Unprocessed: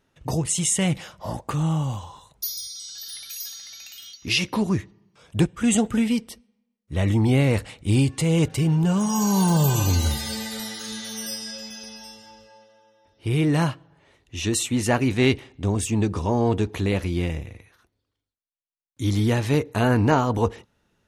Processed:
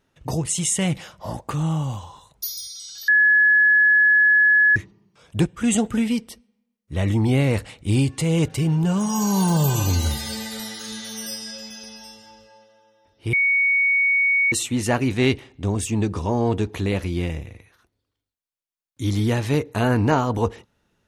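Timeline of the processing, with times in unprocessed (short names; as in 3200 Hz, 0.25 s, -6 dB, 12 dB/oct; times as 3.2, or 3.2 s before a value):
3.08–4.76 bleep 1700 Hz -12 dBFS
13.33–14.52 bleep 2230 Hz -15.5 dBFS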